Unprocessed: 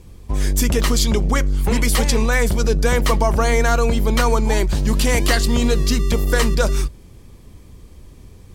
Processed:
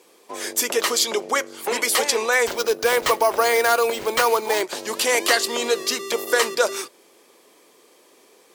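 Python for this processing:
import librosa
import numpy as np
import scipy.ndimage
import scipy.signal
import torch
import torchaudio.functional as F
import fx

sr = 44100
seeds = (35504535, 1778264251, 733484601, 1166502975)

y = scipy.signal.sosfilt(scipy.signal.butter(4, 390.0, 'highpass', fs=sr, output='sos'), x)
y = fx.resample_bad(y, sr, factor=4, down='none', up='hold', at=(2.47, 4.62))
y = F.gain(torch.from_numpy(y), 1.5).numpy()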